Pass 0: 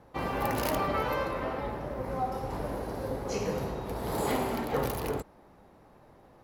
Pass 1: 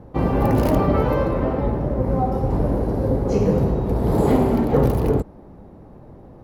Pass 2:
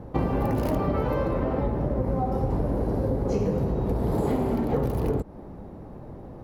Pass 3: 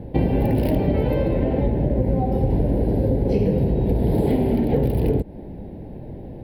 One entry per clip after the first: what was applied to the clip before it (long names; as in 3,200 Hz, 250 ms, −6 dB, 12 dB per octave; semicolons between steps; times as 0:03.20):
tilt shelving filter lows +10 dB, about 730 Hz; level +8 dB
downward compressor 6 to 1, threshold −24 dBFS, peak gain reduction 12 dB; level +2 dB
phaser with its sweep stopped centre 2,900 Hz, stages 4; level +6.5 dB